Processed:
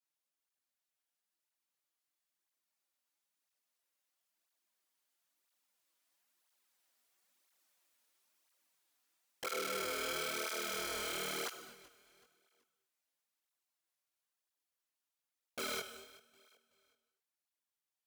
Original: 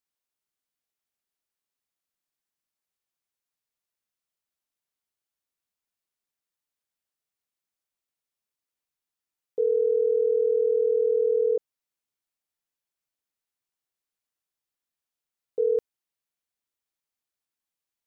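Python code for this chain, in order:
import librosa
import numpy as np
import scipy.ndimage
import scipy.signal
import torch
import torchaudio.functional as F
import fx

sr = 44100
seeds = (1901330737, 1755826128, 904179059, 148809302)

y = fx.doppler_pass(x, sr, speed_mps=9, closest_m=13.0, pass_at_s=7.68)
y = scipy.signal.sosfilt(scipy.signal.butter(2, 270.0, 'highpass', fs=sr, output='sos'), y)
y = fx.peak_eq(y, sr, hz=430.0, db=-7.0, octaves=0.25)
y = fx.over_compress(y, sr, threshold_db=-40.0, ratio=-1.0)
y = (np.mod(10.0 ** (40.5 / 20.0) * y + 1.0, 2.0) - 1.0) / 10.0 ** (40.5 / 20.0)
y = fx.doubler(y, sr, ms=21.0, db=-2.5)
y = fx.echo_feedback(y, sr, ms=379, feedback_pct=38, wet_db=-20.5)
y = fx.rev_gated(y, sr, seeds[0], gate_ms=270, shape='flat', drr_db=10.0)
y = fx.flanger_cancel(y, sr, hz=1.0, depth_ms=6.2)
y = F.gain(torch.from_numpy(y), 8.0).numpy()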